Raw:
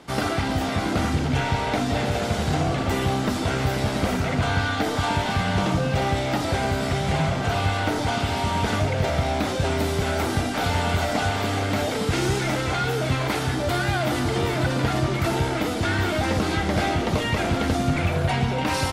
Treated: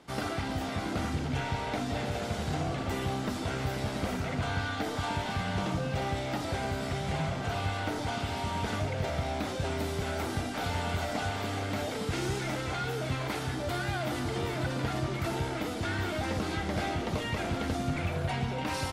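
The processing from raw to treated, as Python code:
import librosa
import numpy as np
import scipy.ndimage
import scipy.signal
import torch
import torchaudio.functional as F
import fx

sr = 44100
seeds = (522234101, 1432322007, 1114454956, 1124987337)

y = x * librosa.db_to_amplitude(-9.0)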